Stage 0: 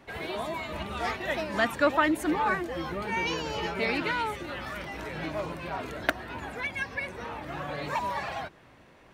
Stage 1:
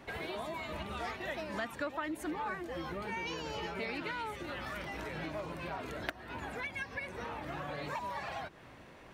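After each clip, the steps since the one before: compressor 3:1, threshold -41 dBFS, peak gain reduction 17 dB; gain +1.5 dB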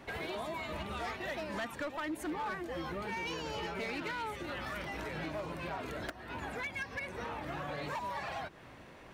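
hard clip -33.5 dBFS, distortion -16 dB; gain +1 dB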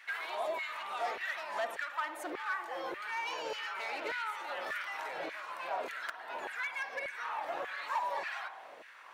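spring tank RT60 1.1 s, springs 50 ms, chirp 50 ms, DRR 9 dB; LFO high-pass saw down 1.7 Hz 470–1900 Hz; gain -1 dB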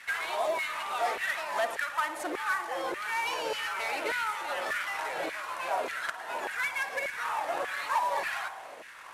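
CVSD 64 kbps; gain +6 dB

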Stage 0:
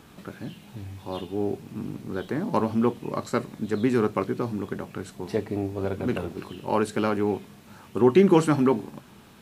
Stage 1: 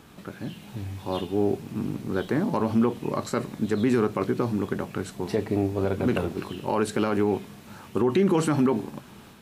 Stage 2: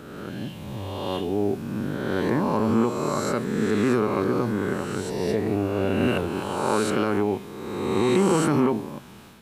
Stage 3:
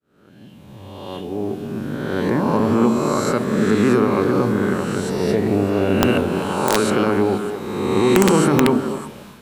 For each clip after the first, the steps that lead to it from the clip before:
AGC gain up to 4 dB; limiter -13.5 dBFS, peak gain reduction 10 dB
spectral swells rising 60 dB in 1.67 s; gain -1.5 dB
opening faded in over 2.85 s; delay with a stepping band-pass 0.12 s, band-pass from 200 Hz, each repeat 1.4 oct, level -3 dB; wrapped overs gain 10 dB; gain +5 dB

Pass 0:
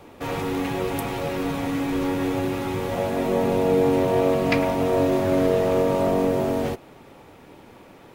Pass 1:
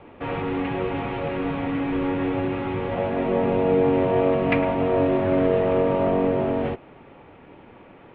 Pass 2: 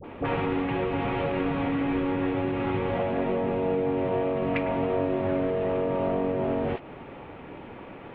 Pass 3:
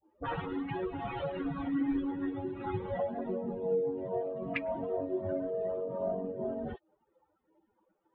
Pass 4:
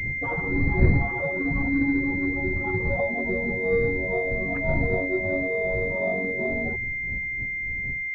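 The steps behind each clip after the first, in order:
steep low-pass 3100 Hz 36 dB/oct
compressor 6:1, threshold -29 dBFS, peak gain reduction 12.5 dB; dispersion highs, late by 44 ms, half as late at 880 Hz; gain +5 dB
per-bin expansion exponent 3
wind noise 120 Hz -37 dBFS; pulse-width modulation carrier 2100 Hz; gain +7 dB

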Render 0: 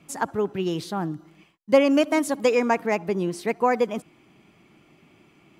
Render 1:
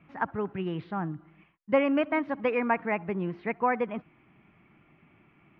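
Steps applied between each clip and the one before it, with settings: inverse Chebyshev low-pass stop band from 7300 Hz, stop band 60 dB; bell 420 Hz -8 dB 2 oct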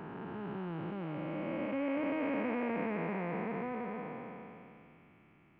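time blur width 1.13 s

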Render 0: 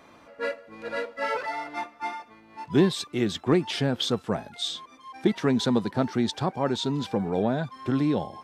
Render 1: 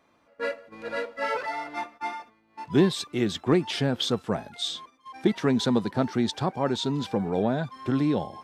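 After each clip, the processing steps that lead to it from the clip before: gate -46 dBFS, range -12 dB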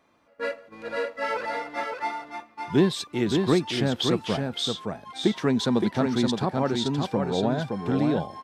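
echo 0.568 s -4.5 dB

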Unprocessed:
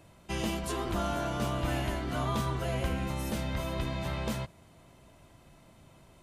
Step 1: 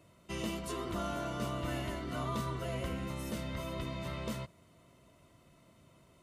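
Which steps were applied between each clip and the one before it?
notch comb 820 Hz; gain -4 dB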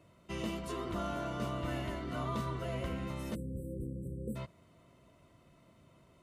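high shelf 4400 Hz -7 dB; spectral delete 3.35–4.36, 580–7600 Hz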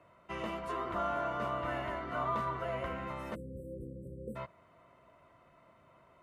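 three-band isolator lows -14 dB, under 600 Hz, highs -18 dB, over 2100 Hz; gain +8 dB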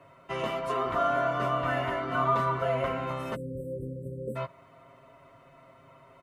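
comb 7.4 ms, depth 76%; gain +5.5 dB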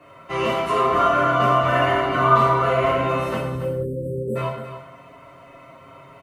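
echo 0.279 s -11 dB; non-linear reverb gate 0.24 s falling, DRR -5.5 dB; gain +3.5 dB

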